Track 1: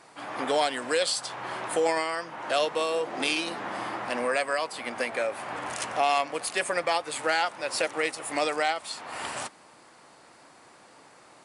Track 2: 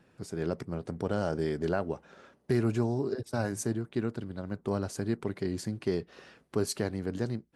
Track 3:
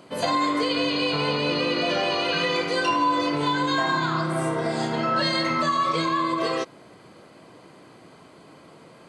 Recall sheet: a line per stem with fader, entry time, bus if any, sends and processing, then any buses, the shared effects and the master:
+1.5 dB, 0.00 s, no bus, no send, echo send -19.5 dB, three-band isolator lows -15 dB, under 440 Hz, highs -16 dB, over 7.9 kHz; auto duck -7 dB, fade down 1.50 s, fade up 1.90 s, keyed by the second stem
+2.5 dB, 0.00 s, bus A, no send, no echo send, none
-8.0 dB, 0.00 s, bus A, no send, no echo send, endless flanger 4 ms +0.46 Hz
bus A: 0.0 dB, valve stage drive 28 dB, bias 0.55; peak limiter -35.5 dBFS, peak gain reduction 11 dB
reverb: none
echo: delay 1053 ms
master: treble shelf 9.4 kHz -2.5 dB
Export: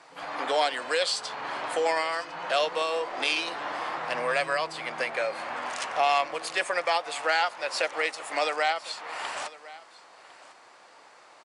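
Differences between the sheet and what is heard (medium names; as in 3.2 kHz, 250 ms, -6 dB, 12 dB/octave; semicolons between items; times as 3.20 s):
stem 2: muted; stem 3 -8.0 dB -> -17.0 dB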